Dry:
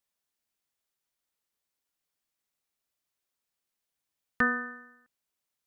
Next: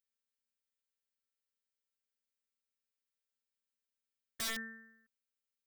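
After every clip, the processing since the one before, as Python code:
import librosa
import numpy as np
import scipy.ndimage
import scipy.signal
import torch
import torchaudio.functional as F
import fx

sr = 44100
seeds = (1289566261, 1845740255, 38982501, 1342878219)

y = fx.robotise(x, sr, hz=225.0)
y = fx.band_shelf(y, sr, hz=730.0, db=-11.5, octaves=1.3)
y = (np.mod(10.0 ** (27.0 / 20.0) * y + 1.0, 2.0) - 1.0) / 10.0 ** (27.0 / 20.0)
y = y * librosa.db_to_amplitude(-5.0)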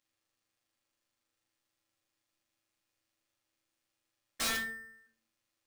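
y = fx.highpass(x, sr, hz=320.0, slope=6)
y = fx.sample_hold(y, sr, seeds[0], rate_hz=17000.0, jitter_pct=0)
y = fx.room_shoebox(y, sr, seeds[1], volume_m3=270.0, walls='furnished', distance_m=2.2)
y = y * librosa.db_to_amplitude(2.5)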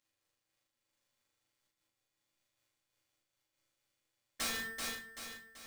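y = fx.doubler(x, sr, ms=38.0, db=-5.0)
y = fx.echo_feedback(y, sr, ms=384, feedback_pct=55, wet_db=-7)
y = fx.am_noise(y, sr, seeds[2], hz=5.7, depth_pct=60)
y = y * librosa.db_to_amplitude(1.5)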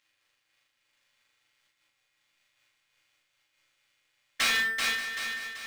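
y = fx.peak_eq(x, sr, hz=2300.0, db=14.5, octaves=2.4)
y = y + 10.0 ** (-13.5 / 20.0) * np.pad(y, (int(583 * sr / 1000.0), 0))[:len(y)]
y = y * librosa.db_to_amplitude(1.5)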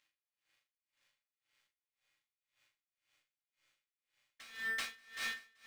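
y = x * 10.0 ** (-27 * (0.5 - 0.5 * np.cos(2.0 * np.pi * 1.9 * np.arange(len(x)) / sr)) / 20.0)
y = y * librosa.db_to_amplitude(-4.0)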